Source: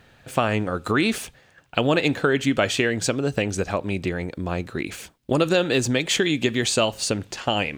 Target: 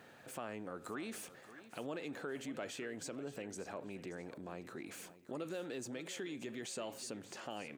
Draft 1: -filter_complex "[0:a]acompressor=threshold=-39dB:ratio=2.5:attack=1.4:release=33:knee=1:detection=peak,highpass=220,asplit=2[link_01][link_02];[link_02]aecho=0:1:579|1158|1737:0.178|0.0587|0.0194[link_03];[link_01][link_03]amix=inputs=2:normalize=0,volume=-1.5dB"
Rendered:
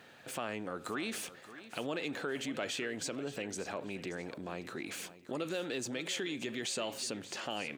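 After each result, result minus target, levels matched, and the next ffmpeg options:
downward compressor: peak gain reduction −5 dB; 4,000 Hz band +4.5 dB
-filter_complex "[0:a]acompressor=threshold=-47dB:ratio=2.5:attack=1.4:release=33:knee=1:detection=peak,highpass=220,asplit=2[link_01][link_02];[link_02]aecho=0:1:579|1158|1737:0.178|0.0587|0.0194[link_03];[link_01][link_03]amix=inputs=2:normalize=0,volume=-1.5dB"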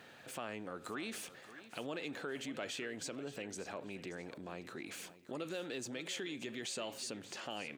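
4,000 Hz band +4.5 dB
-filter_complex "[0:a]acompressor=threshold=-47dB:ratio=2.5:attack=1.4:release=33:knee=1:detection=peak,highpass=220,equalizer=frequency=3400:width_type=o:width=1.7:gain=-6.5,asplit=2[link_01][link_02];[link_02]aecho=0:1:579|1158|1737:0.178|0.0587|0.0194[link_03];[link_01][link_03]amix=inputs=2:normalize=0,volume=-1.5dB"

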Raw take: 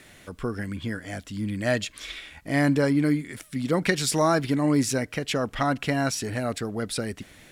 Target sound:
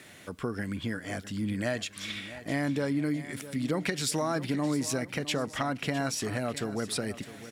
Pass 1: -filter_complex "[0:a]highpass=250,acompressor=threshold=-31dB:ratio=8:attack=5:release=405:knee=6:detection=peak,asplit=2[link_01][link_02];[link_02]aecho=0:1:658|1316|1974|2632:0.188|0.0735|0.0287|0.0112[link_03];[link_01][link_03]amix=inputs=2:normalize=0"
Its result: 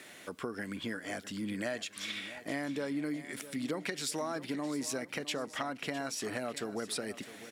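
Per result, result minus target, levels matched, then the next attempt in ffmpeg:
125 Hz band −7.5 dB; downward compressor: peak gain reduction +5.5 dB
-filter_complex "[0:a]highpass=98,acompressor=threshold=-31dB:ratio=8:attack=5:release=405:knee=6:detection=peak,asplit=2[link_01][link_02];[link_02]aecho=0:1:658|1316|1974|2632:0.188|0.0735|0.0287|0.0112[link_03];[link_01][link_03]amix=inputs=2:normalize=0"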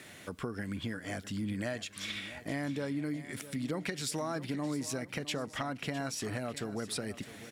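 downward compressor: peak gain reduction +6 dB
-filter_complex "[0:a]highpass=98,acompressor=threshold=-24dB:ratio=8:attack=5:release=405:knee=6:detection=peak,asplit=2[link_01][link_02];[link_02]aecho=0:1:658|1316|1974|2632:0.188|0.0735|0.0287|0.0112[link_03];[link_01][link_03]amix=inputs=2:normalize=0"

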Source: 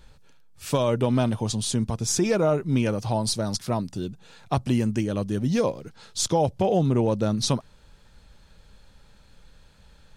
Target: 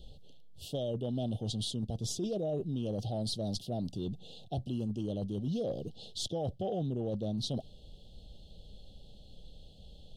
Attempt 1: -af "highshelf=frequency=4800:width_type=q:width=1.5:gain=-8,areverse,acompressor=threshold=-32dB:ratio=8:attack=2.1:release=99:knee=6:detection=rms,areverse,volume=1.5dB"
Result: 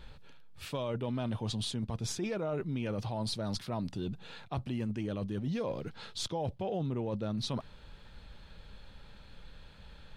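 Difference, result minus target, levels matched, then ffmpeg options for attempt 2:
2,000 Hz band +17.5 dB
-af "asuperstop=centerf=1500:order=20:qfactor=0.72,highshelf=frequency=4800:width_type=q:width=1.5:gain=-8,areverse,acompressor=threshold=-32dB:ratio=8:attack=2.1:release=99:knee=6:detection=rms,areverse,volume=1.5dB"

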